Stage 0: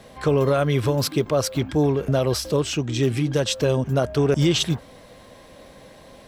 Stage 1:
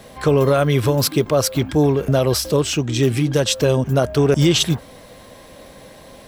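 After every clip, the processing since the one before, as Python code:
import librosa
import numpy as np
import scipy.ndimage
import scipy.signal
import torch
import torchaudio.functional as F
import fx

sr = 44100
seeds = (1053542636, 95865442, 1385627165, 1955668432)

y = fx.high_shelf(x, sr, hz=11000.0, db=9.5)
y = y * 10.0 ** (4.0 / 20.0)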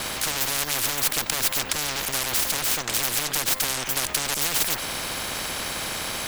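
y = fx.lower_of_two(x, sr, delay_ms=1.3)
y = fx.spectral_comp(y, sr, ratio=10.0)
y = y * 10.0 ** (3.0 / 20.0)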